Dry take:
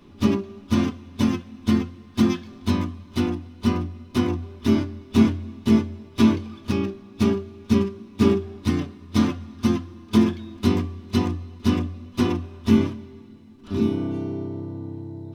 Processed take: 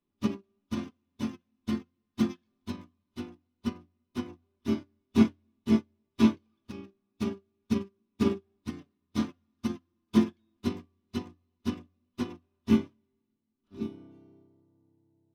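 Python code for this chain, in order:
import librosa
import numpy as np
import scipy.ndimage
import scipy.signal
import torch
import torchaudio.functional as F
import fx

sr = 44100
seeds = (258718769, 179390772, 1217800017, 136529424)

y = fx.peak_eq(x, sr, hz=85.0, db=-5.5, octaves=0.88)
y = fx.upward_expand(y, sr, threshold_db=-33.0, expansion=2.5)
y = F.gain(torch.from_numpy(y), -2.0).numpy()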